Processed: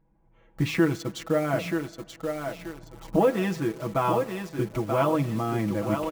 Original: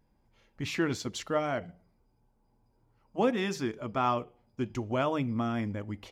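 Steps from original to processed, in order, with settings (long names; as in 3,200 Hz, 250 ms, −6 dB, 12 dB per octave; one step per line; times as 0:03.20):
adaptive Wiener filter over 9 samples
camcorder AGC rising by 13 dB per second
high-shelf EQ 2,600 Hz −10 dB
feedback echo with a high-pass in the loop 932 ms, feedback 35%, high-pass 180 Hz, level −5.5 dB
in parallel at −7.5 dB: bit reduction 7 bits
on the sum: high-shelf EQ 7,000 Hz +5.5 dB
comb filter 6.1 ms, depth 79%
on a send at −23.5 dB: convolution reverb RT60 1.9 s, pre-delay 98 ms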